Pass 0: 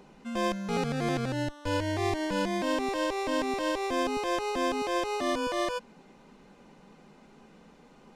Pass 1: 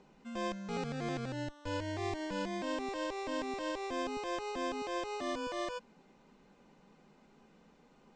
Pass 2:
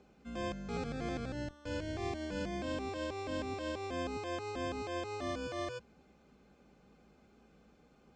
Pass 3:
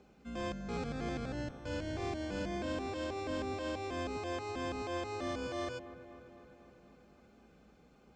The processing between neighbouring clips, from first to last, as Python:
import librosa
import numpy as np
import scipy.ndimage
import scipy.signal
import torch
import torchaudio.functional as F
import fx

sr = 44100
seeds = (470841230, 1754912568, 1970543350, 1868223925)

y1 = scipy.signal.sosfilt(scipy.signal.butter(12, 8400.0, 'lowpass', fs=sr, output='sos'), x)
y1 = F.gain(torch.from_numpy(y1), -8.0).numpy()
y2 = fx.octave_divider(y1, sr, octaves=2, level_db=1.0)
y2 = fx.notch_comb(y2, sr, f0_hz=950.0)
y2 = F.gain(torch.from_numpy(y2), -1.0).numpy()
y3 = 10.0 ** (-30.0 / 20.0) * np.tanh(y2 / 10.0 ** (-30.0 / 20.0))
y3 = fx.echo_wet_lowpass(y3, sr, ms=253, feedback_pct=66, hz=2000.0, wet_db=-13.5)
y3 = F.gain(torch.from_numpy(y3), 1.0).numpy()